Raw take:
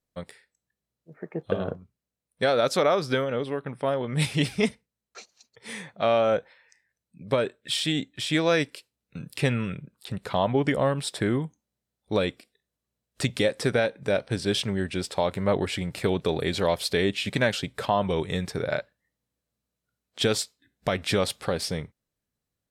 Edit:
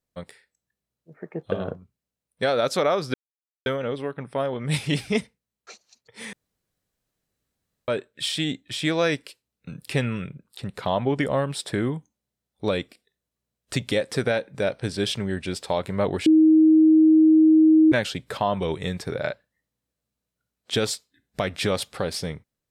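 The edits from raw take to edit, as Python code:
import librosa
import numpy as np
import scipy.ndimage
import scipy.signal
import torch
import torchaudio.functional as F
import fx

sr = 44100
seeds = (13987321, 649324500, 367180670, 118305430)

y = fx.edit(x, sr, fx.insert_silence(at_s=3.14, length_s=0.52),
    fx.room_tone_fill(start_s=5.81, length_s=1.55),
    fx.bleep(start_s=15.74, length_s=1.66, hz=315.0, db=-11.5), tone=tone)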